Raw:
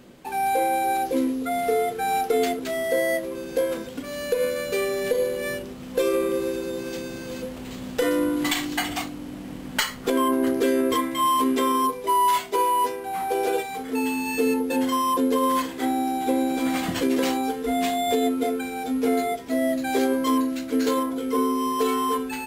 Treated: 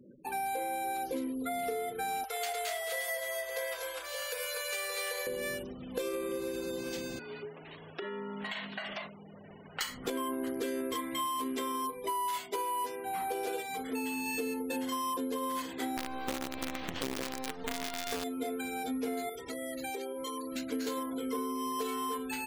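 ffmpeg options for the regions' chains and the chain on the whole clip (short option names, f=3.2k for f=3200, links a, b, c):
-filter_complex "[0:a]asettb=1/sr,asplit=3[a][b][c];[a]atrim=end=2.244[d];[b]atrim=start=2.24:end=5.27,asetpts=PTS-STARTPTS,afade=t=in:d=0.004:c=qsin,afade=t=out:st=3.026:d=0.004:c=qsin,highpass=f=680:w=0.5412,highpass=f=680:w=1.3066,aeval=exprs='val(0)+0.00112*(sin(2*PI*50*n/s)+sin(2*PI*2*50*n/s)/2+sin(2*PI*3*50*n/s)/3+sin(2*PI*4*50*n/s)/4+sin(2*PI*5*50*n/s)/5)':c=same,aecho=1:1:53|107|217|244|569|575:0.141|0.299|0.355|0.708|0.237|0.266,atrim=end_sample=133623[e];[c]atrim=start=5.266[f];[d][e]acrossfade=d=0.004:c1=hsin:c2=qsin[g];[g][f]acrossfade=d=0.004:c1=qsin:c2=hsin,asettb=1/sr,asplit=3[h][i][j];[h]atrim=end=7.194[k];[i]atrim=start=7.19:end=9.81,asetpts=PTS-STARTPTS,afade=t=in:d=0.004:c=qsin,afade=t=out:st=2.616:d=0.004:c=qsin,acrossover=split=380 3600:gain=0.0891 1 0.126[l][m][n];[l][m][n]amix=inputs=3:normalize=0,acompressor=threshold=-30dB:ratio=5:attack=3.2:release=140:knee=1:detection=peak,afreqshift=-94[o];[j]atrim=start=9.806[p];[k][o]acrossfade=d=0.004:c1=hsin:c2=qsin[q];[q][p]acrossfade=d=0.004:c1=qsin:c2=hsin,asettb=1/sr,asplit=3[r][s][t];[r]atrim=end=15.974[u];[s]atrim=start=15.97:end=18.24,asetpts=PTS-STARTPTS,afade=t=in:d=0.004:c=qsin,afade=t=out:st=2.266:d=0.004:c=qsin,lowpass=f=3.8k:w=0.5412,lowpass=f=3.8k:w=1.3066,acrusher=bits=4:dc=4:mix=0:aa=0.000001[v];[t]atrim=start=18.236[w];[u][v]acrossfade=d=0.004:c1=hsin:c2=qsin[x];[x][w]acrossfade=d=0.004:c1=qsin:c2=hsin,asettb=1/sr,asplit=3[y][z][aa];[y]atrim=end=19.294[ab];[z]atrim=start=19.29:end=20.56,asetpts=PTS-STARTPTS,afade=t=in:d=0.004:c=qsin,afade=t=out:st=1.266:d=0.004:c=qsin,lowshelf=f=79:g=-2.5,aecho=1:1:2.2:0.67,atrim=end_sample=56007,acompressor=threshold=-29dB:ratio=12:attack=3.2:release=140:knee=1:detection=peak[ac];[aa]atrim=start=20.556[ad];[ab][ac]acrossfade=d=0.004:c1=hsin:c2=qsin[ae];[ae][ad]acrossfade=d=0.004:c1=qsin:c2=hsin,highshelf=f=2.1k:g=5.5,afftfilt=real='re*gte(hypot(re,im),0.01)':imag='im*gte(hypot(re,im),0.01)':win_size=1024:overlap=0.75,acompressor=threshold=-26dB:ratio=6,volume=-6dB"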